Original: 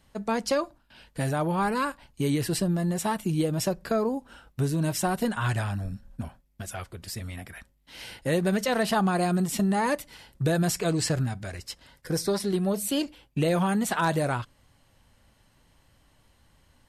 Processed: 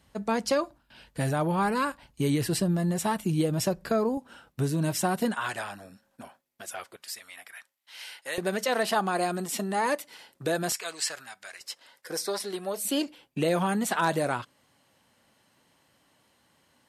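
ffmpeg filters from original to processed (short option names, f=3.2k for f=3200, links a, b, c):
-af "asetnsamples=n=441:p=0,asendcmd='4.17 highpass f 120;5.34 highpass f 410;6.96 highpass f 980;8.38 highpass f 320;10.72 highpass f 1100;11.61 highpass f 500;12.85 highpass f 200',highpass=46"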